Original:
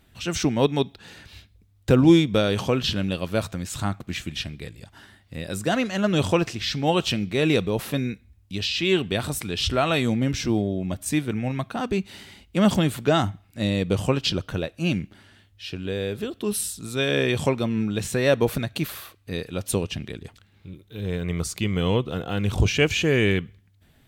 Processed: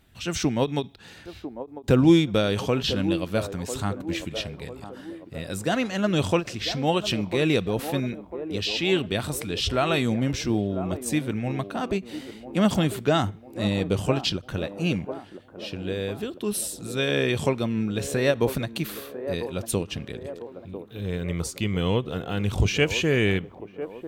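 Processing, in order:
delay with a band-pass on its return 998 ms, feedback 48%, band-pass 530 Hz, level −9 dB
every ending faded ahead of time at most 320 dB per second
level −1.5 dB

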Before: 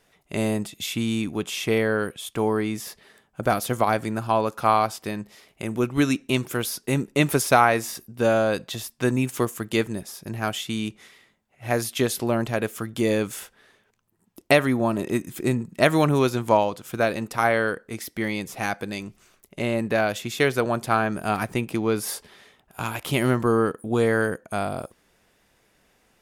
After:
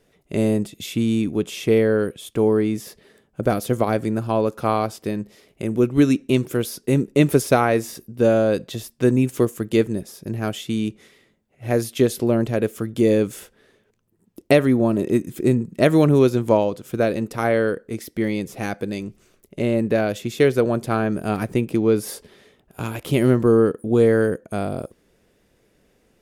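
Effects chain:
low shelf with overshoot 630 Hz +7 dB, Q 1.5
level −2.5 dB

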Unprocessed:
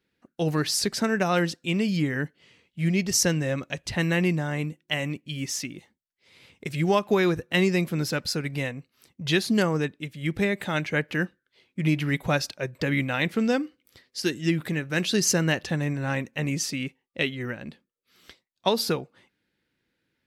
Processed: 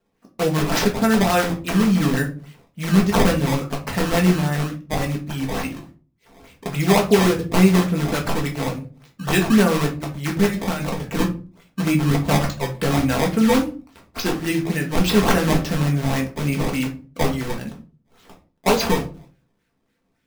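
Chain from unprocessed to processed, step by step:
0:10.46–0:11.06: compressor whose output falls as the input rises −29 dBFS, ratio −0.5
sample-and-hold swept by an LFO 18×, swing 160% 3.5 Hz
rectangular room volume 190 cubic metres, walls furnished, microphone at 1.6 metres
level +2.5 dB

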